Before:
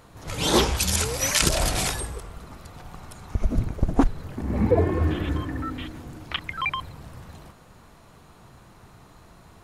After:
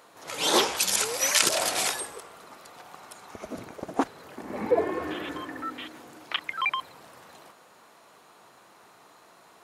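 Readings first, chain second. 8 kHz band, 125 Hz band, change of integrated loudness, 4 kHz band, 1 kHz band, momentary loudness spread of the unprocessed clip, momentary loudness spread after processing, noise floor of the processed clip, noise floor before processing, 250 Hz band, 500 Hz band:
0.0 dB, -22.5 dB, -1.5 dB, 0.0 dB, 0.0 dB, 22 LU, 20 LU, -56 dBFS, -52 dBFS, -8.0 dB, -2.0 dB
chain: high-pass 420 Hz 12 dB/octave

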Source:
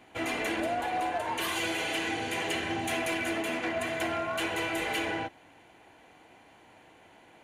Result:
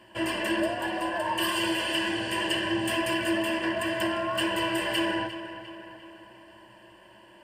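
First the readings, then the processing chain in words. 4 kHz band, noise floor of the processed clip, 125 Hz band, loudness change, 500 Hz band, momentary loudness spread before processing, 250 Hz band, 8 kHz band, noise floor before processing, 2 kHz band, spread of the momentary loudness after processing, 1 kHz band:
+6.0 dB, -53 dBFS, +3.0 dB, +3.5 dB, +3.0 dB, 2 LU, +6.0 dB, +1.0 dB, -57 dBFS, +2.5 dB, 12 LU, +1.5 dB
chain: rippled EQ curve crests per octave 1.3, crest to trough 16 dB; on a send: filtered feedback delay 350 ms, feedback 55%, low-pass 4.8 kHz, level -12 dB

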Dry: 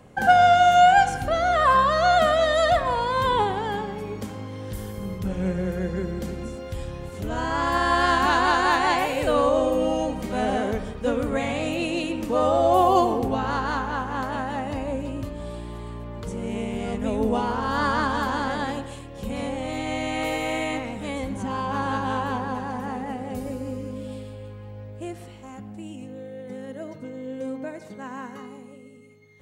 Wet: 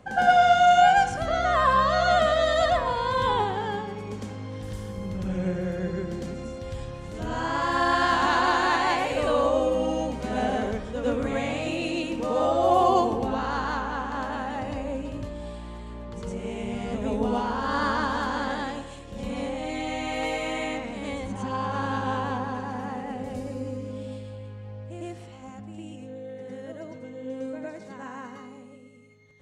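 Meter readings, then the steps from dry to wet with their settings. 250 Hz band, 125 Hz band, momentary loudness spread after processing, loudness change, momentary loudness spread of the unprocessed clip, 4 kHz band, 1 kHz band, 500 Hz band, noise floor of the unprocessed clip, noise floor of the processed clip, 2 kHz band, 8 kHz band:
-2.5 dB, -2.0 dB, 19 LU, -2.0 dB, 18 LU, -1.5 dB, -2.0 dB, -2.0 dB, -42 dBFS, -43 dBFS, -2.0 dB, -2.5 dB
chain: Chebyshev low-pass 7.1 kHz, order 2; on a send: reverse echo 107 ms -5 dB; on the sum: trim -2.5 dB

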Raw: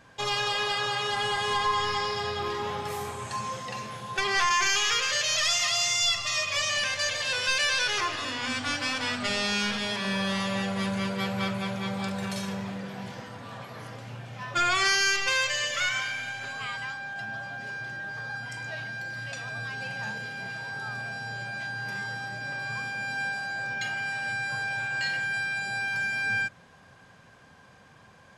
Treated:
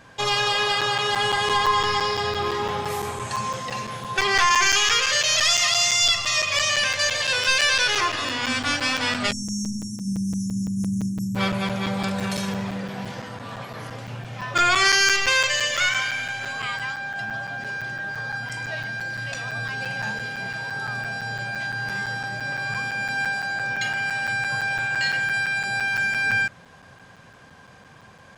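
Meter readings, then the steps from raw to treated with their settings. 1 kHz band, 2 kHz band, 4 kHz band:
+5.5 dB, +5.5 dB, +5.5 dB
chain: spectral selection erased 9.32–11.36 s, 360–5400 Hz; crackling interface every 0.17 s, samples 256, zero, from 0.81 s; trim +6 dB

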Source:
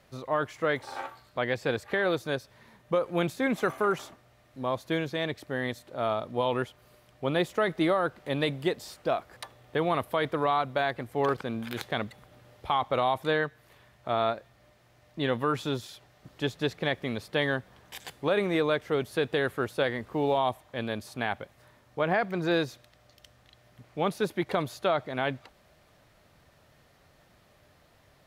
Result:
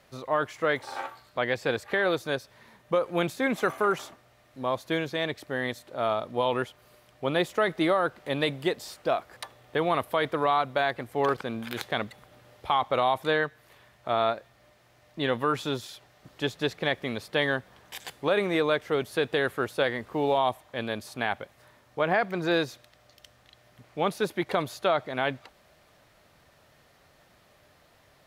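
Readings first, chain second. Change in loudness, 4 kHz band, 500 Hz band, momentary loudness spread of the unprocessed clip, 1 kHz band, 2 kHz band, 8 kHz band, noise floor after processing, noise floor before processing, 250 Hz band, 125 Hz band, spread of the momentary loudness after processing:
+1.5 dB, +2.5 dB, +1.5 dB, 9 LU, +2.0 dB, +2.5 dB, +2.5 dB, -61 dBFS, -62 dBFS, 0.0 dB, -1.5 dB, 10 LU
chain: bass shelf 270 Hz -5.5 dB; trim +2.5 dB

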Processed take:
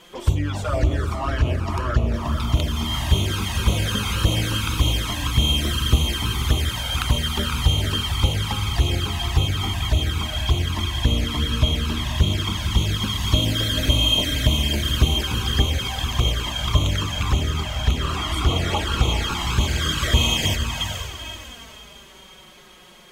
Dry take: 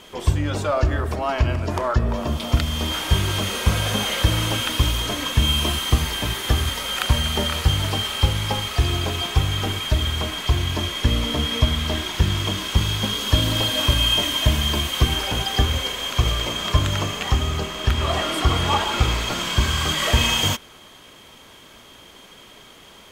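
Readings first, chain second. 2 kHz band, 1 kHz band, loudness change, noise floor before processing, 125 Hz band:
-2.0 dB, -3.0 dB, -0.5 dB, -46 dBFS, +1.0 dB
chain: echo that smears into a reverb 469 ms, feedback 41%, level -5.5 dB; touch-sensitive flanger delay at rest 6.4 ms, full sweep at -14.5 dBFS

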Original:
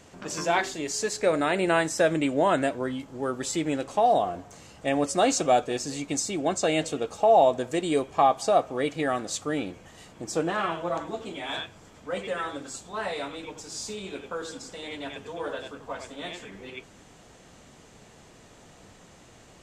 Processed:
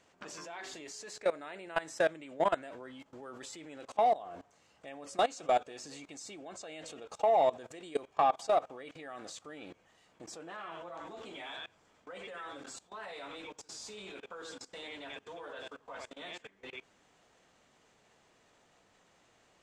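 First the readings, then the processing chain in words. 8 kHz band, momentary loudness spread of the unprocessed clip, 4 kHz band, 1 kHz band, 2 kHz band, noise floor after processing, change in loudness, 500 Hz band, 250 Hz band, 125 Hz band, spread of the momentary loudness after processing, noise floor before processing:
-15.0 dB, 15 LU, -10.5 dB, -7.5 dB, -10.5 dB, -68 dBFS, -9.5 dB, -9.0 dB, -18.0 dB, -19.0 dB, 18 LU, -53 dBFS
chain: level held to a coarse grid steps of 21 dB; overdrive pedal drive 11 dB, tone 3.9 kHz, clips at -9 dBFS; trim -6.5 dB

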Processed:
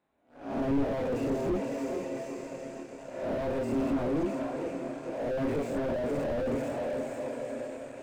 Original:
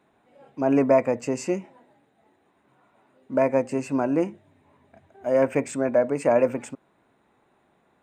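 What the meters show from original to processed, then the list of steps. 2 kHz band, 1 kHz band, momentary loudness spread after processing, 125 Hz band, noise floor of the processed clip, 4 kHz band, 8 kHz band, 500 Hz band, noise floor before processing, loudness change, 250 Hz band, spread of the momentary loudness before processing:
-6.5 dB, -7.5 dB, 10 LU, -2.5 dB, -49 dBFS, no reading, -9.5 dB, -7.5 dB, -66 dBFS, -8.5 dB, -4.5 dB, 10 LU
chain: reverse spectral sustain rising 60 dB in 0.67 s; on a send: echo that smears into a reverb 477 ms, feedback 61%, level -10 dB; on the sum: waveshaping leveller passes 2; chorus voices 6, 0.48 Hz, delay 27 ms, depth 2.2 ms; slew-rate limiter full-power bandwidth 42 Hz; trim -7.5 dB

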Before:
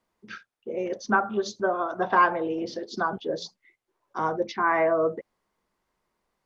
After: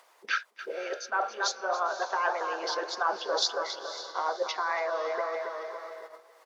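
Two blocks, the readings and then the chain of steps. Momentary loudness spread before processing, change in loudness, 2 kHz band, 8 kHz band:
19 LU, -5.0 dB, -2.5 dB, no reading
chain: feedback delay 278 ms, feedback 35%, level -12.5 dB; reverse; compression 10:1, threshold -35 dBFS, peak gain reduction 20 dB; reverse; high-pass 520 Hz 24 dB/octave; harmonic-percussive split percussive +7 dB; upward compressor, threshold -42 dBFS; on a send: echo that smears into a reverb 537 ms, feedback 48%, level -12 dB; on the sum: wow and flutter 28 cents; gate -49 dBFS, range -11 dB; trim +7 dB

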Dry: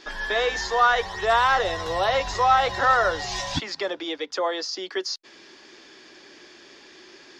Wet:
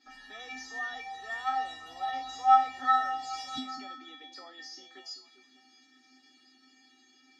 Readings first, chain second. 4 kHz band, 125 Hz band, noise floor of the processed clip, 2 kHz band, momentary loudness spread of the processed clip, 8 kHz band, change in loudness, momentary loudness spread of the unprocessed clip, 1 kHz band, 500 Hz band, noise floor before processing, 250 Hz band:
-13.0 dB, under -25 dB, -63 dBFS, -13.5 dB, 22 LU, -13.5 dB, -7.0 dB, 10 LU, -5.5 dB, -27.5 dB, -50 dBFS, -11.0 dB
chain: feedback comb 260 Hz, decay 0.39 s, harmonics odd, mix 100%; repeats whose band climbs or falls 199 ms, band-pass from 240 Hz, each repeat 0.7 oct, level -8 dB; trim +4.5 dB

